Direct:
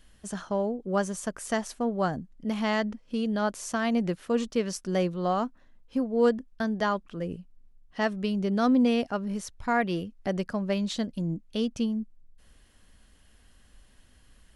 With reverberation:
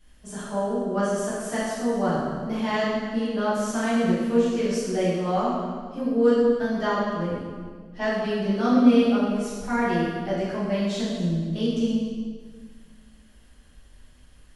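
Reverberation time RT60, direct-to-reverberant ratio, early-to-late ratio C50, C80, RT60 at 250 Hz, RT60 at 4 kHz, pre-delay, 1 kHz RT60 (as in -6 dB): 1.7 s, -11.0 dB, -1.5 dB, 1.0 dB, 2.0 s, 1.4 s, 5 ms, 1.6 s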